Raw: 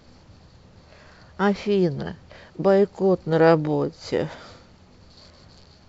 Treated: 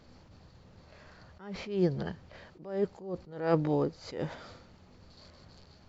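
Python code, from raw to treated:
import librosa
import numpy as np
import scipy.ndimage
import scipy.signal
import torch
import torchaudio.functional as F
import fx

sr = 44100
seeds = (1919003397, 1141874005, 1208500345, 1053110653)

y = fx.high_shelf(x, sr, hz=5200.0, db=-4.5)
y = fx.attack_slew(y, sr, db_per_s=110.0)
y = y * 10.0 ** (-5.0 / 20.0)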